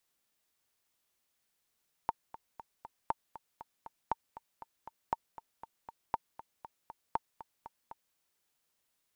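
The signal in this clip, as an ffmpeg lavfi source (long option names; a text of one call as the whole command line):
ffmpeg -f lavfi -i "aevalsrc='pow(10,(-16.5-16*gte(mod(t,4*60/237),60/237))/20)*sin(2*PI*909*mod(t,60/237))*exp(-6.91*mod(t,60/237)/0.03)':duration=6.07:sample_rate=44100" out.wav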